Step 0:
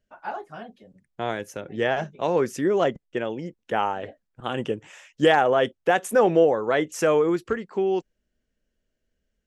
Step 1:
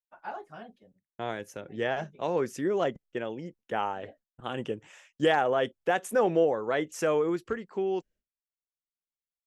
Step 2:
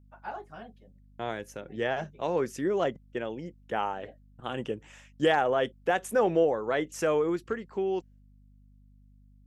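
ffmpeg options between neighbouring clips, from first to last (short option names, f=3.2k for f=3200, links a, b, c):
-af "agate=range=-33dB:threshold=-46dB:ratio=3:detection=peak,volume=-6dB"
-af "aeval=exprs='val(0)+0.00158*(sin(2*PI*50*n/s)+sin(2*PI*2*50*n/s)/2+sin(2*PI*3*50*n/s)/3+sin(2*PI*4*50*n/s)/4+sin(2*PI*5*50*n/s)/5)':c=same"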